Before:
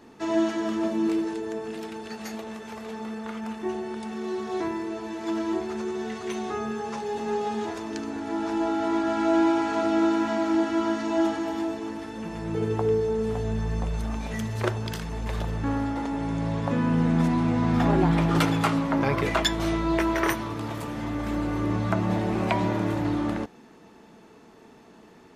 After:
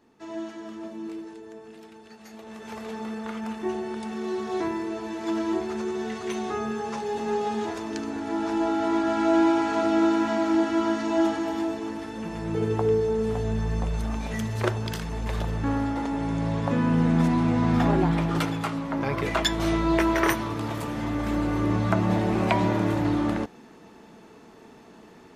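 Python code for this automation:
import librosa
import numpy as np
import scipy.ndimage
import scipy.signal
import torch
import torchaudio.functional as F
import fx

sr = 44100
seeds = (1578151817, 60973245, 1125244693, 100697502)

y = fx.gain(x, sr, db=fx.line((2.27, -11.0), (2.72, 1.0), (17.74, 1.0), (18.71, -6.0), (19.75, 2.0)))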